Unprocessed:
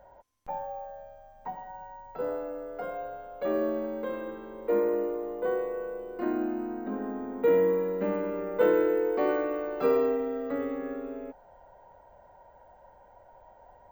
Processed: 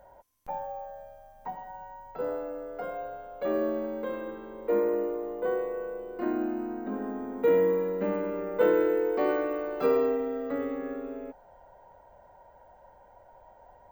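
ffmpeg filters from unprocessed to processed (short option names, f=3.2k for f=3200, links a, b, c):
-af "asetnsamples=n=441:p=0,asendcmd='2.11 equalizer g 3;4.17 equalizer g -3.5;6.4 equalizer g 6.5;6.95 equalizer g 14;7.9 equalizer g 3;8.81 equalizer g 14.5;9.86 equalizer g 4',equalizer=f=14k:t=o:w=1:g=13"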